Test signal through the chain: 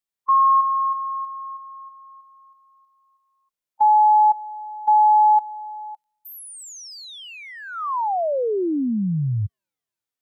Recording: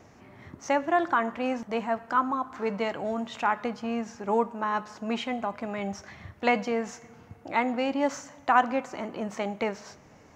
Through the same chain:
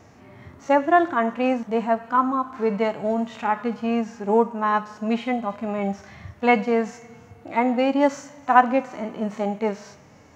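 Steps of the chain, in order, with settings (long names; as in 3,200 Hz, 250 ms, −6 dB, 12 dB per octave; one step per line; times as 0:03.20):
delay with a high-pass on its return 326 ms, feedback 47%, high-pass 3,900 Hz, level −23.5 dB
harmonic and percussive parts rebalanced percussive −17 dB
level +7.5 dB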